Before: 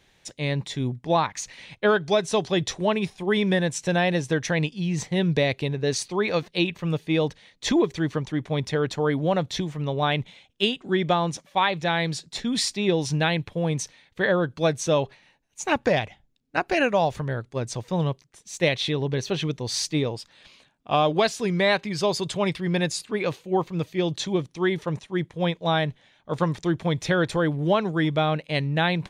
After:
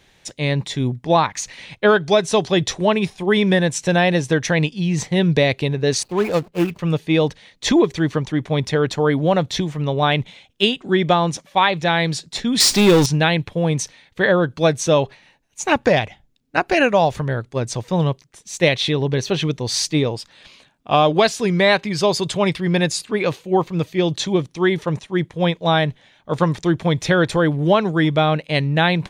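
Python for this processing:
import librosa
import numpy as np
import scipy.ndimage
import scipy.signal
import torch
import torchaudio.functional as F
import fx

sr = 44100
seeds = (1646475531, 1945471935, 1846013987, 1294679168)

y = fx.median_filter(x, sr, points=25, at=(6.03, 6.79))
y = fx.power_curve(y, sr, exponent=0.5, at=(12.6, 13.06))
y = y * 10.0 ** (6.0 / 20.0)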